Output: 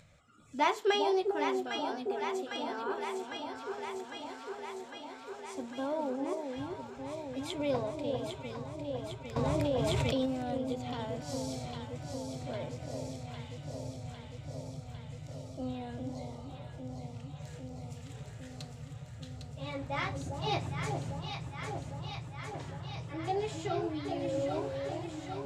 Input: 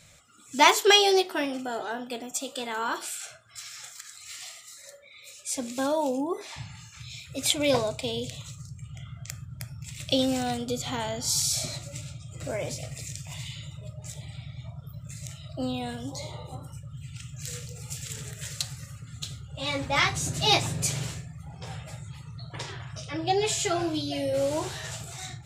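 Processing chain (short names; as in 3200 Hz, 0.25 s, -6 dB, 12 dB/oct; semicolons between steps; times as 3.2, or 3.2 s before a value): LPF 1200 Hz 6 dB/oct; upward compressor, threshold -48 dBFS; on a send: echo with dull and thin repeats by turns 0.402 s, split 870 Hz, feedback 86%, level -4 dB; 9.36–10.26 on the sum: fast leveller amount 100%; gain -7 dB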